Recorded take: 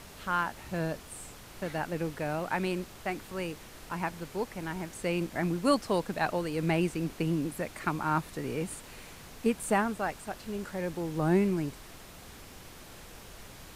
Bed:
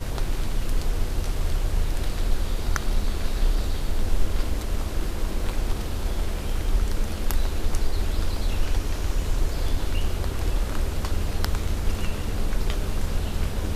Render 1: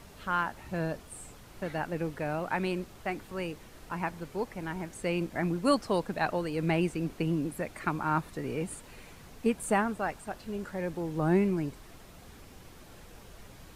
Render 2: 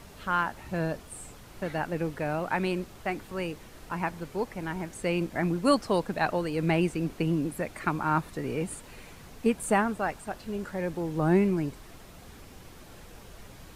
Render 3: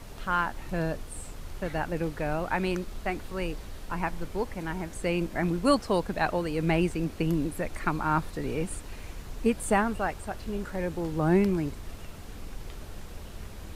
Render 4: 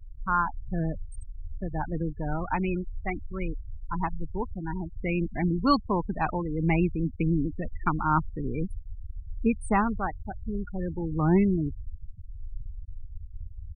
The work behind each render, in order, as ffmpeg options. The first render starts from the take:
-af "afftdn=nr=6:nf=-49"
-af "volume=2.5dB"
-filter_complex "[1:a]volume=-16.5dB[a];[0:a][a]amix=inputs=2:normalize=0"
-af "afftfilt=real='re*gte(hypot(re,im),0.0562)':imag='im*gte(hypot(re,im),0.0562)':win_size=1024:overlap=0.75,aecho=1:1:0.9:0.56"

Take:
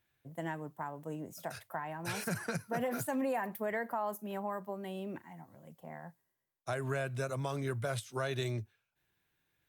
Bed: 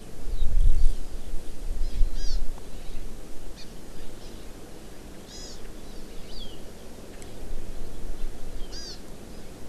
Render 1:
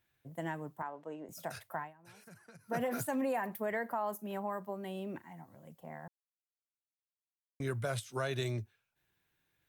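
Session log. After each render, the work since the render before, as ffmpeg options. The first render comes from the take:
-filter_complex "[0:a]asettb=1/sr,asplit=3[a][b][c];[a]atrim=end=0.824[d];[b]atrim=start=0.82:end=1.29,asetpts=PTS-STARTPTS,afade=t=in:d=0.004:c=qsin,afade=t=out:st=0.466:d=0.004:c=qsin,highpass=330,lowpass=3.9k[e];[c]atrim=start=1.286[f];[d][e]acrossfade=d=0.004:c1=hsin:c2=qsin[g];[g][f]acrossfade=d=0.004:c1=qsin:c2=hsin,asplit=5[h][i][j][k][l];[h]atrim=end=1.95,asetpts=PTS-STARTPTS,afade=t=out:st=1.82:d=0.13:c=qua:silence=0.1[m];[i]atrim=start=1.95:end=2.57,asetpts=PTS-STARTPTS,volume=-20dB[n];[j]atrim=start=2.57:end=6.08,asetpts=PTS-STARTPTS,afade=t=in:d=0.13:c=qua:silence=0.1,afade=t=out:st=3.506:d=0.004:c=hsin[o];[k]atrim=start=6.08:end=7.6,asetpts=PTS-STARTPTS,volume=0[p];[l]atrim=start=7.6,asetpts=PTS-STARTPTS,afade=t=in:d=0.004:c=hsin[q];[m][n][o][p][q]concat=n=5:v=0:a=1"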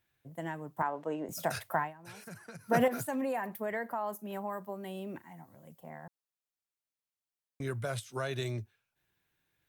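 -filter_complex "[0:a]asettb=1/sr,asplit=3[a][b][c];[a]atrim=end=4.324[d];[b]atrim=start=4.32:end=5.9,asetpts=PTS-STARTPTS,afade=t=in:d=0.004:c=qsin,afade=t=out:st=1.576:d=0.004:c=qsin,highshelf=f=7.6k:g=5.5[e];[c]atrim=start=5.896[f];[d][e]acrossfade=d=0.004:c1=hsin:c2=qsin[g];[g][f]acrossfade=d=0.004:c1=qsin:c2=hsin,asplit=3[h][i][j];[h]atrim=end=0.772[k];[i]atrim=start=0.768:end=2.882,asetpts=PTS-STARTPTS,volume=8.5dB[l];[j]atrim=start=2.878[m];[k][l]acrossfade=d=0.004:c1=hsin:c2=hsin[n];[n][m]acrossfade=d=0.004:c1=hsin:c2=hsin"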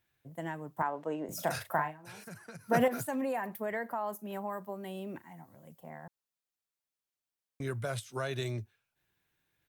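-filter_complex "[0:a]asplit=3[a][b][c];[a]afade=t=out:st=1.28:d=0.02[d];[b]asplit=2[e][f];[f]adelay=39,volume=-8dB[g];[e][g]amix=inputs=2:normalize=0,afade=t=in:st=1.28:d=0.02,afade=t=out:st=2.23:d=0.02[h];[c]afade=t=in:st=2.23:d=0.02[i];[d][h][i]amix=inputs=3:normalize=0"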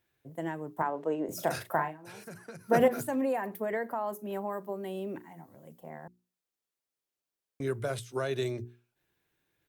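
-af "equalizer=f=380:t=o:w=1.2:g=7,bandreject=f=60:t=h:w=6,bandreject=f=120:t=h:w=6,bandreject=f=180:t=h:w=6,bandreject=f=240:t=h:w=6,bandreject=f=300:t=h:w=6,bandreject=f=360:t=h:w=6,bandreject=f=420:t=h:w=6"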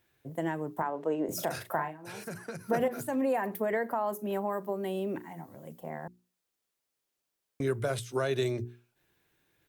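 -filter_complex "[0:a]asplit=2[a][b];[b]acompressor=threshold=-38dB:ratio=6,volume=-1dB[c];[a][c]amix=inputs=2:normalize=0,alimiter=limit=-18.5dB:level=0:latency=1:release=497"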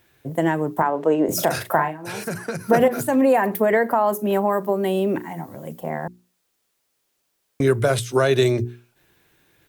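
-af "volume=12dB"

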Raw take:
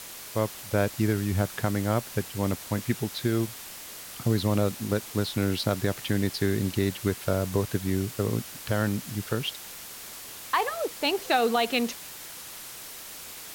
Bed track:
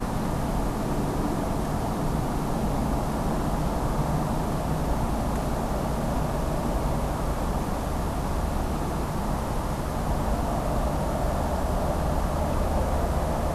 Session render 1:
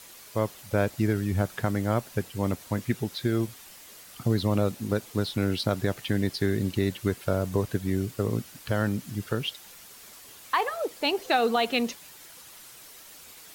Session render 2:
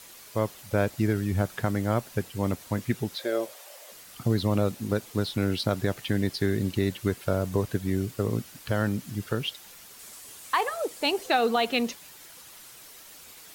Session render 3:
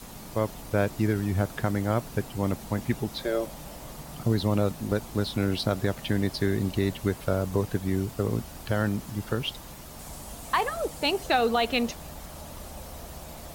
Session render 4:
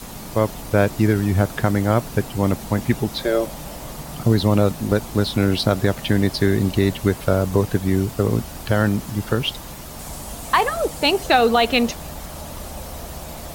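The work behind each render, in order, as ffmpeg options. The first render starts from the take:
-af "afftdn=nr=8:nf=-42"
-filter_complex "[0:a]asettb=1/sr,asplit=3[a][b][c];[a]atrim=end=3.194[d];[b]atrim=start=3.19:end=3.92,asetpts=PTS-STARTPTS,afade=t=in:d=0.004:c=qsin,afade=t=out:st=0.726:d=0.004:c=qsin,highpass=f=570:t=q:w=6.6[e];[c]atrim=start=3.916[f];[d][e]acrossfade=d=0.004:c1=hsin:c2=qsin[g];[g][f]acrossfade=d=0.004:c1=qsin:c2=hsin,asettb=1/sr,asplit=3[h][i][j];[h]atrim=end=9.994[k];[i]atrim=start=9.99:end=11.28,asetpts=PTS-STARTPTS,afade=t=in:d=0.004:c=qsin,afade=t=out:st=1.286:d=0.004:c=qsin,equalizer=f=8.7k:w=1.2:g=6[l];[j]atrim=start=11.276[m];[k][l]acrossfade=d=0.004:c1=hsin:c2=qsin[n];[n][m]acrossfade=d=0.004:c1=qsin:c2=hsin"
-filter_complex "[1:a]volume=-17dB[a];[0:a][a]amix=inputs=2:normalize=0"
-af "volume=8dB"

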